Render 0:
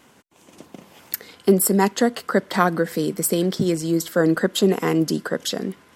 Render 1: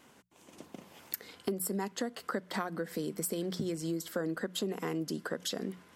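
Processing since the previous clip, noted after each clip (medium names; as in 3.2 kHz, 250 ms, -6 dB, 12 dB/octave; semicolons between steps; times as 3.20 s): hum notches 60/120/180 Hz; compression 6:1, threshold -25 dBFS, peak gain reduction 14 dB; trim -6.5 dB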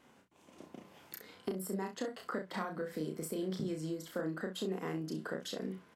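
treble shelf 4.2 kHz -8 dB; on a send: early reflections 32 ms -4 dB, 64 ms -11.5 dB; on the sum: trim -4 dB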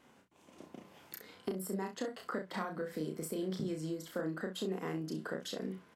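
no audible change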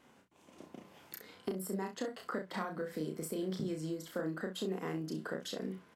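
short-mantissa float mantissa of 6-bit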